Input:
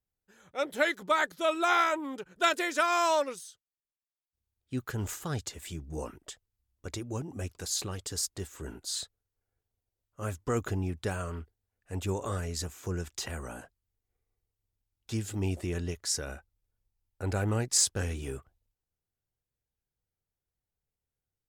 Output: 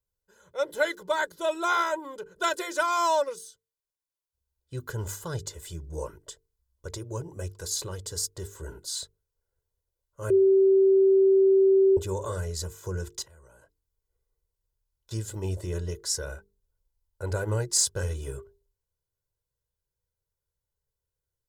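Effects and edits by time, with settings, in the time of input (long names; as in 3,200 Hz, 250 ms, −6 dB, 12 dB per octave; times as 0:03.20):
0:10.30–0:11.97: beep over 386 Hz −18 dBFS
0:13.22–0:15.11: downward compressor 8 to 1, threshold −54 dBFS
whole clip: parametric band 2,400 Hz −10 dB 0.7 octaves; mains-hum notches 50/100/150/200/250/300/350/400/450 Hz; comb filter 2 ms, depth 78%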